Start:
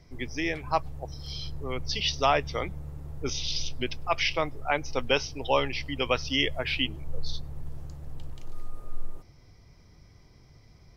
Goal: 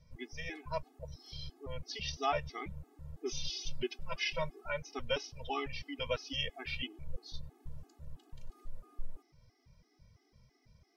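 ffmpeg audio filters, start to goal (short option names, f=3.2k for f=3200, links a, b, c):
-filter_complex "[0:a]asettb=1/sr,asplit=3[a][b][c];[a]atrim=end=3.254[d];[b]atrim=start=3.25:end=4.67,asetpts=PTS-STARTPTS,afade=t=in:d=0.004:c=qsin,afade=t=out:st=1.416:d=0.004:c=qsin,aecho=1:1:5.3:0.84,atrim=end_sample=62622[e];[c]atrim=start=4.666[f];[d][e]acrossfade=d=0.004:c1=hsin:c2=qsin[g];[g][f]acrossfade=d=0.004:c1=qsin:c2=hsin,afftfilt=real='re*gt(sin(2*PI*3*pts/sr)*(1-2*mod(floor(b*sr/1024/220),2)),0)':imag='im*gt(sin(2*PI*3*pts/sr)*(1-2*mod(floor(b*sr/1024/220),2)),0)':win_size=1024:overlap=0.75,volume=-7dB"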